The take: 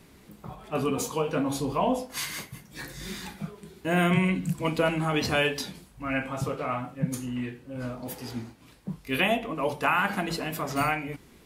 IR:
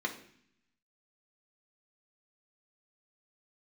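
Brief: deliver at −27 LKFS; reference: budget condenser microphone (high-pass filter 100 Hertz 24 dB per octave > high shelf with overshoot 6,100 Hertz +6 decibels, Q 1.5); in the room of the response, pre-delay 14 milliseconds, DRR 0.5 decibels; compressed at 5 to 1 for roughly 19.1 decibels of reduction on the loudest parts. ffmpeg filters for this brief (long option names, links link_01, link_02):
-filter_complex "[0:a]acompressor=threshold=-42dB:ratio=5,asplit=2[link_01][link_02];[1:a]atrim=start_sample=2205,adelay=14[link_03];[link_02][link_03]afir=irnorm=-1:irlink=0,volume=-5.5dB[link_04];[link_01][link_04]amix=inputs=2:normalize=0,highpass=frequency=100:width=0.5412,highpass=frequency=100:width=1.3066,highshelf=frequency=6100:width_type=q:width=1.5:gain=6,volume=14.5dB"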